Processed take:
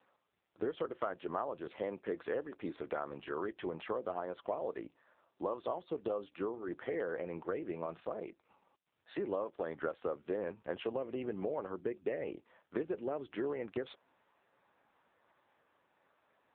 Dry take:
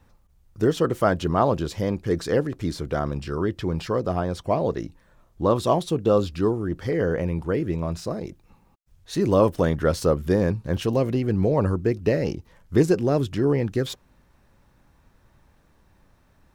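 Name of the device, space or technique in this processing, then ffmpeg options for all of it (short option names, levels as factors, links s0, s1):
voicemail: -filter_complex "[0:a]asettb=1/sr,asplit=3[s0][s1][s2];[s0]atrim=end=1.754[s3];[s1]atrim=start=1.75:end=2.87,asetpts=PTS-STARTPTS,afade=t=in:d=0.004:c=qsin,afade=t=out:st=1.116:d=0.004:c=qsin,highpass=f=47:p=1[s4];[s2]atrim=start=2.866[s5];[s3][s4]acrossfade=d=0.004:c1=hsin:c2=qsin[s6];[s6][s5]acrossfade=d=0.004:c1=qsin:c2=hsin,acrossover=split=4800[s7][s8];[s8]acompressor=threshold=0.00251:ratio=4:attack=1:release=60[s9];[s7][s9]amix=inputs=2:normalize=0,highpass=450,lowpass=3000,acompressor=threshold=0.0282:ratio=6,volume=0.794" -ar 8000 -c:a libopencore_amrnb -b:a 5900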